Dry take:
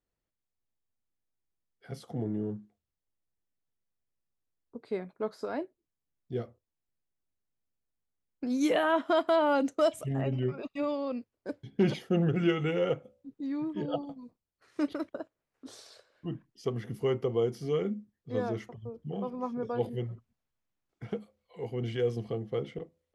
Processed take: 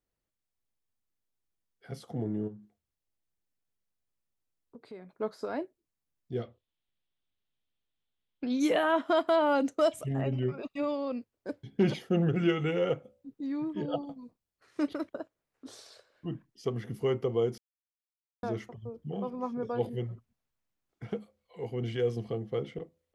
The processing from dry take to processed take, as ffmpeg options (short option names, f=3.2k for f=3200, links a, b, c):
-filter_complex "[0:a]asplit=3[a][b][c];[a]afade=t=out:st=2.47:d=0.02[d];[b]acompressor=threshold=-47dB:ratio=2.5:attack=3.2:release=140:knee=1:detection=peak,afade=t=in:st=2.47:d=0.02,afade=t=out:st=5.19:d=0.02[e];[c]afade=t=in:st=5.19:d=0.02[f];[d][e][f]amix=inputs=3:normalize=0,asettb=1/sr,asplit=3[g][h][i];[g]atrim=end=6.424[j];[h]atrim=start=6.42:end=8.6,asetpts=PTS-STARTPTS,afade=t=in:d=0.004:c=qsin,afade=t=out:st=2.176:d=0.004:c=qsin,lowpass=f=3.4k:t=q:w=4.2[k];[i]atrim=start=8.596[l];[j][k]acrossfade=d=0.004:c1=hsin:c2=qsin[m];[m][l]acrossfade=d=0.004:c1=qsin:c2=hsin,asplit=3[n][o][p];[n]atrim=end=17.58,asetpts=PTS-STARTPTS,afade=t=out:st=17.576:d=0.004:c=hsin[q];[o]atrim=start=17.58:end=18.43,asetpts=PTS-STARTPTS,volume=0[r];[p]atrim=start=18.43,asetpts=PTS-STARTPTS,afade=t=in:d=0.004:c=hsin[s];[q][r][s]concat=n=3:v=0:a=1"